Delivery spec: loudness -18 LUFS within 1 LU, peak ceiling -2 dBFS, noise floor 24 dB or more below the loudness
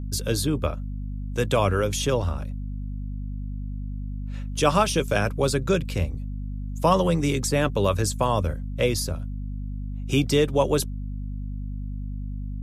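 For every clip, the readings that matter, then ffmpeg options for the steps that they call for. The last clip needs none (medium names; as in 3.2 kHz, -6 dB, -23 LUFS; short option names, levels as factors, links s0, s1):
hum 50 Hz; highest harmonic 250 Hz; hum level -29 dBFS; loudness -26.0 LUFS; peak level -5.5 dBFS; loudness target -18.0 LUFS
-> -af "bandreject=f=50:t=h:w=6,bandreject=f=100:t=h:w=6,bandreject=f=150:t=h:w=6,bandreject=f=200:t=h:w=6,bandreject=f=250:t=h:w=6"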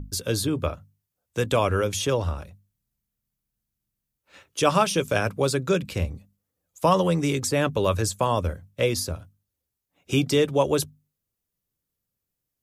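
hum not found; loudness -24.5 LUFS; peak level -6.5 dBFS; loudness target -18.0 LUFS
-> -af "volume=2.11,alimiter=limit=0.794:level=0:latency=1"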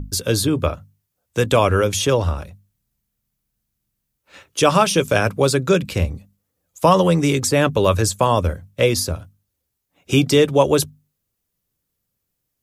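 loudness -18.0 LUFS; peak level -2.0 dBFS; noise floor -77 dBFS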